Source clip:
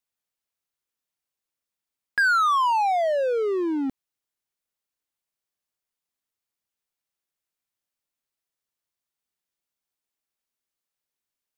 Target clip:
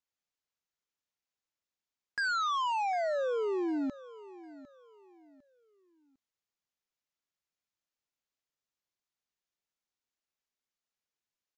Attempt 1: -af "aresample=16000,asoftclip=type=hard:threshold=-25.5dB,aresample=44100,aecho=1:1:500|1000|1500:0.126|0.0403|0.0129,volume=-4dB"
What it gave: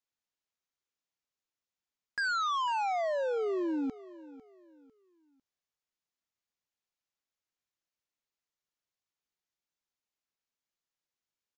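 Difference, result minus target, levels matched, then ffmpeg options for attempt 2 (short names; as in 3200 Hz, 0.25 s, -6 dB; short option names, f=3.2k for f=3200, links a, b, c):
echo 0.253 s early
-af "aresample=16000,asoftclip=type=hard:threshold=-25.5dB,aresample=44100,aecho=1:1:753|1506|2259:0.126|0.0403|0.0129,volume=-4dB"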